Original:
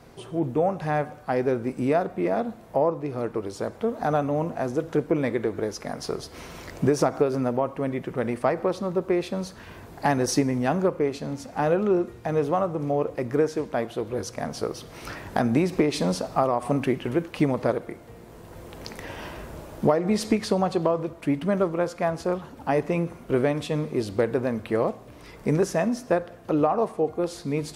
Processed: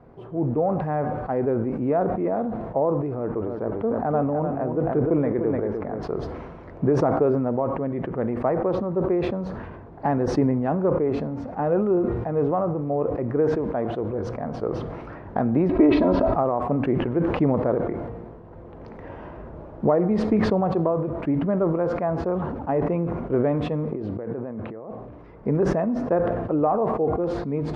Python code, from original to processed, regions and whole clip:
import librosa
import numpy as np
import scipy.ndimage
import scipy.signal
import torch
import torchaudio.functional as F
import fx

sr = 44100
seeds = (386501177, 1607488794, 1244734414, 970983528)

y = fx.chain(x, sr, fx.lowpass(hz=3200.0, slope=12),
    fx.echo_single(ms=300, db=-7.0), at=(3.16, 6.03))
y = fx.chain(y, sr, fx.lowpass(hz=4200.0, slope=24),
    fx.comb(ms=3.1, depth=0.86),
    fx.env_flatten(amount_pct=50), at=(15.69, 16.34))
y = fx.chain(y, sr, fx.high_shelf(hz=6400.0, db=-9.5),
    fx.over_compress(threshold_db=-34.0, ratio=-1.0),
    fx.highpass(hz=100.0, slope=12), at=(23.91, 24.91))
y = scipy.signal.sosfilt(scipy.signal.butter(2, 1100.0, 'lowpass', fs=sr, output='sos'), y)
y = fx.sustainer(y, sr, db_per_s=34.0)